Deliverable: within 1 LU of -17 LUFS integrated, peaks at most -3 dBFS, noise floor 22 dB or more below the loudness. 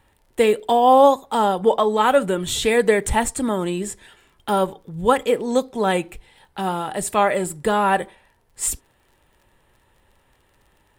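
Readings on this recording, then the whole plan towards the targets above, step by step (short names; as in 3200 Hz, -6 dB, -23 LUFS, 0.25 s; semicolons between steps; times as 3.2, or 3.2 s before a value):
ticks 28/s; loudness -20.0 LUFS; peak -2.5 dBFS; loudness target -17.0 LUFS
-> de-click; gain +3 dB; limiter -3 dBFS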